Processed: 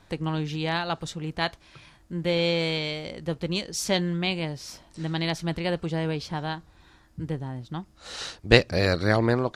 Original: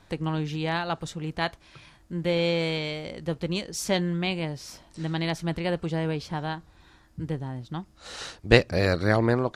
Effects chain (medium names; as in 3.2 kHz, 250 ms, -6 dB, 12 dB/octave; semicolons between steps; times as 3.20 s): dynamic bell 4.3 kHz, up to +4 dB, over -44 dBFS, Q 0.99